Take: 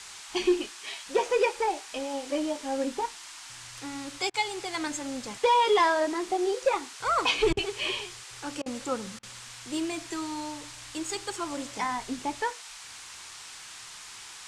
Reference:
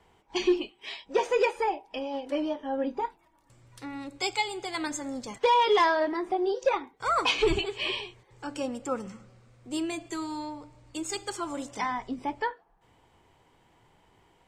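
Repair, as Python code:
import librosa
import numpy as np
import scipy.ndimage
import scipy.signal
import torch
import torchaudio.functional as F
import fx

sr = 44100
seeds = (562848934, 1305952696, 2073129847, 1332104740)

y = fx.fix_interpolate(x, sr, at_s=(4.3, 7.53, 8.62, 9.19), length_ms=39.0)
y = fx.noise_reduce(y, sr, print_start_s=9.16, print_end_s=9.66, reduce_db=18.0)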